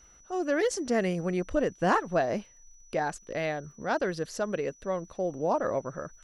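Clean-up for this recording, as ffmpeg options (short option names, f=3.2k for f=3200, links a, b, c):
-af "adeclick=t=4,bandreject=f=5.9k:w=30"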